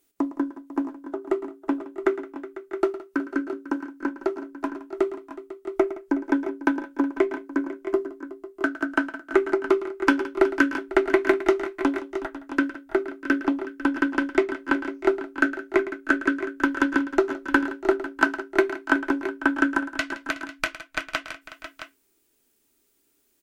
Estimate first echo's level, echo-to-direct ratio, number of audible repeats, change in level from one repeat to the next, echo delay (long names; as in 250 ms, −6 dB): −15.0 dB, −7.5 dB, 5, repeats not evenly spaced, 110 ms